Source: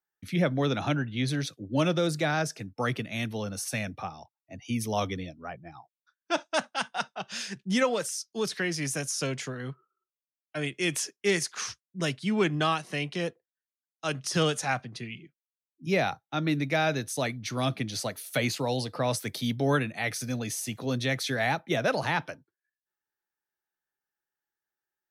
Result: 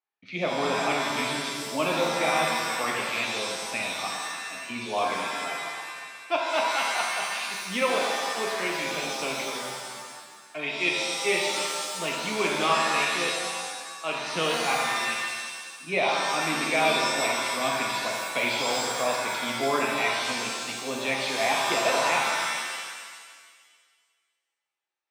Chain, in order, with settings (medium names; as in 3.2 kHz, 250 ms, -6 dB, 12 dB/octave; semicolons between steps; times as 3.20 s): cabinet simulation 300–4500 Hz, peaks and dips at 710 Hz +4 dB, 1.1 kHz +7 dB, 1.6 kHz -7 dB, 2.4 kHz +9 dB; pitch-shifted reverb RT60 1.6 s, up +7 st, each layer -2 dB, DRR -1 dB; trim -3 dB